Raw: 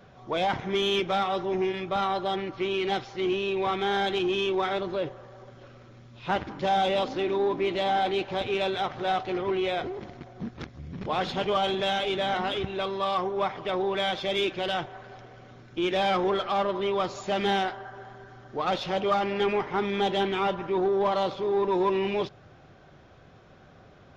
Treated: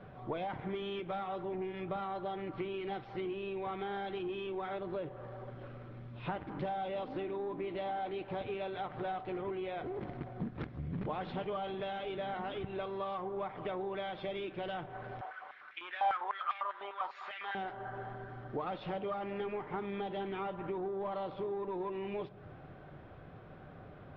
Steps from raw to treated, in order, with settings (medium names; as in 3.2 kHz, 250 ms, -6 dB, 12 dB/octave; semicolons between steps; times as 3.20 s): compression 12:1, threshold -36 dBFS, peak gain reduction 15.5 dB; distance through air 420 m; simulated room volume 3100 m³, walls furnished, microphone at 0.45 m; 15.21–17.55 s: step-sequenced high-pass 10 Hz 820–2100 Hz; trim +2 dB